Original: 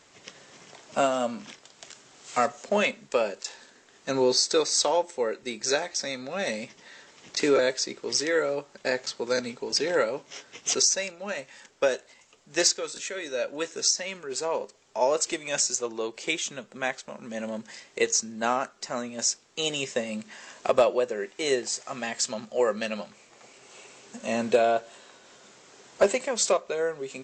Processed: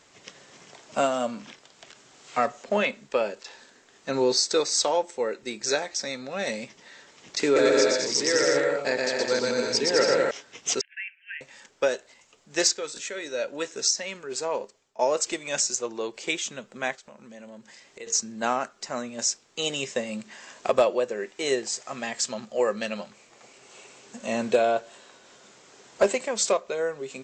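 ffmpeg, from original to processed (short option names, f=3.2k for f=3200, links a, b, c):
-filter_complex "[0:a]asettb=1/sr,asplit=3[a][b][c];[a]atrim=end=1.314[d];[b]atrim=start=1.31:end=4.13,asetpts=PTS-STARTPTS,afade=t=in:d=0.004:c=qsin,afade=t=out:st=2.816:d=0.004:c=qsin,acrossover=split=4500[e][f];[f]acompressor=threshold=-53dB:ratio=4:attack=1:release=60[g];[e][g]amix=inputs=2:normalize=0[h];[c]atrim=start=4.126[i];[d][h]acrossfade=d=0.004:c1=hsin:c2=qsin[j];[j][i]acrossfade=d=0.004:c1=qsin:c2=hsin,asettb=1/sr,asplit=3[k][l][m];[k]atrim=end=7.444[n];[l]atrim=start=7.44:end=10.31,asetpts=PTS-STARTPTS,afade=t=in:d=0.004:c=qsin,afade=t=out:st=2.866:d=0.004:c=qsin,aecho=1:1:120|210|277.5|328.1|366.1:0.794|0.631|0.501|0.398|0.316,atrim=end_sample=126567[o];[m]atrim=start=10.306[p];[n][o]acrossfade=d=0.004:c1=hsin:c2=qsin[q];[q][p]acrossfade=d=0.004:c1=qsin:c2=hsin,asettb=1/sr,asplit=3[r][s][t];[r]atrim=end=10.814[u];[s]atrim=start=10.81:end=11.41,asetpts=PTS-STARTPTS,afade=t=in:d=0.004:c=qsin,afade=t=out:st=0.596:d=0.004:c=qsin,asuperpass=centerf=2200:order=20:qfactor=1.4[v];[t]atrim=start=11.406[w];[u][v]acrossfade=d=0.004:c1=hsin:c2=qsin[x];[x][w]acrossfade=d=0.004:c1=qsin:c2=hsin,asplit=3[y][z][aa];[y]afade=t=out:st=16.95:d=0.02[ab];[z]acompressor=threshold=-50dB:ratio=2:attack=3.2:release=140:knee=1:detection=peak,afade=t=in:st=16.95:d=0.02,afade=t=out:st=18.06:d=0.02[ac];[aa]afade=t=in:st=18.06:d=0.02[ad];[ab][ac][ad]amix=inputs=3:normalize=0,asplit=2[ae][af];[ae]atrim=end=14.99,asetpts=PTS-STARTPTS,afade=t=out:st=14.56:d=0.43:silence=0.0668344[ag];[af]atrim=start=14.99,asetpts=PTS-STARTPTS,afade=t=in:d=0.004:c=hsin:silence=0.0668344[ah];[ag][ah]concat=n=2:v=0:a=1"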